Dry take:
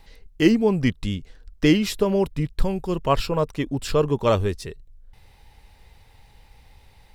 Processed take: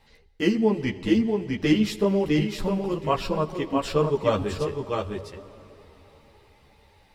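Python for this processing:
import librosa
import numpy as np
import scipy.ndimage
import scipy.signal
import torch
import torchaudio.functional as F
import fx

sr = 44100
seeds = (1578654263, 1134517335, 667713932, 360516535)

y = fx.highpass(x, sr, hz=73.0, slope=6)
y = fx.high_shelf(y, sr, hz=6900.0, db=-6.5)
y = fx.hum_notches(y, sr, base_hz=50, count=2)
y = y + 10.0 ** (-4.0 / 20.0) * np.pad(y, (int(656 * sr / 1000.0), 0))[:len(y)]
y = fx.rev_plate(y, sr, seeds[0], rt60_s=4.3, hf_ratio=0.85, predelay_ms=0, drr_db=14.0)
y = fx.ensemble(y, sr)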